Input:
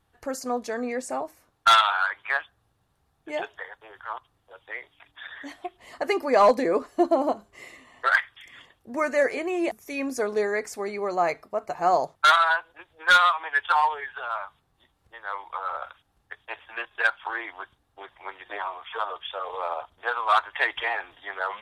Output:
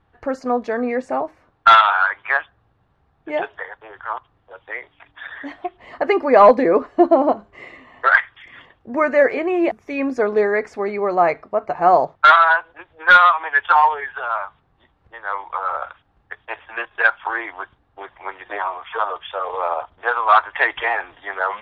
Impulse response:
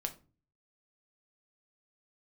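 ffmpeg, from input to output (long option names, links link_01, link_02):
-af "lowpass=2300,volume=8dB"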